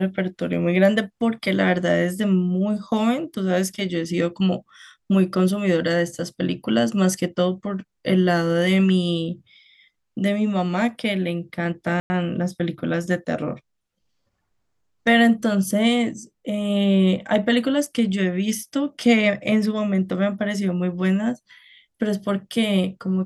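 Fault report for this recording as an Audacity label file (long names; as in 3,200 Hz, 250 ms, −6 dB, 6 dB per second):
12.000000	12.100000	drop-out 100 ms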